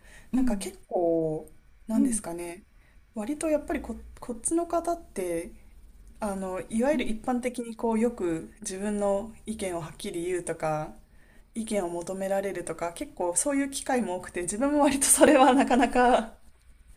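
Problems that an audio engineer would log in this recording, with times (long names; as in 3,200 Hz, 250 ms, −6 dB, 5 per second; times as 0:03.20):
0:15.27–0:15.28: drop-out 5.8 ms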